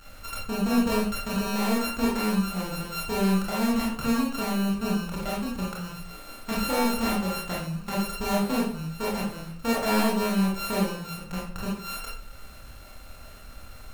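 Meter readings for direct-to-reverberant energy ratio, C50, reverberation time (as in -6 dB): -5.0 dB, 3.5 dB, 0.55 s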